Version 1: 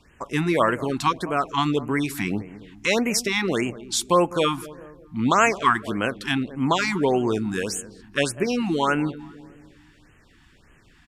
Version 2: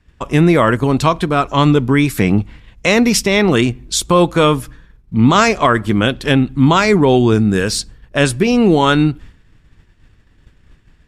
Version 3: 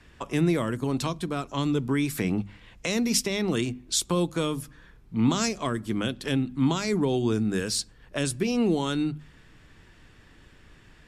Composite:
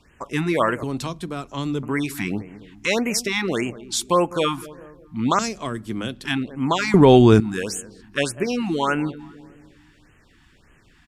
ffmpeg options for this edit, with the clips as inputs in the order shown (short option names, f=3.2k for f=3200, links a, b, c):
-filter_complex "[2:a]asplit=2[a][b];[0:a]asplit=4[c][d][e][f];[c]atrim=end=0.832[g];[a]atrim=start=0.828:end=1.832[h];[d]atrim=start=1.828:end=5.392[i];[b]atrim=start=5.388:end=6.252[j];[e]atrim=start=6.248:end=6.942[k];[1:a]atrim=start=6.938:end=7.402[l];[f]atrim=start=7.398[m];[g][h]acrossfade=d=0.004:c1=hsin:c2=hsin[n];[n][i]acrossfade=d=0.004:c1=hsin:c2=hsin[o];[o][j]acrossfade=d=0.004:c1=hsin:c2=hsin[p];[p][k]acrossfade=d=0.004:c1=hsin:c2=hsin[q];[q][l]acrossfade=d=0.004:c1=hsin:c2=hsin[r];[r][m]acrossfade=d=0.004:c1=hsin:c2=hsin"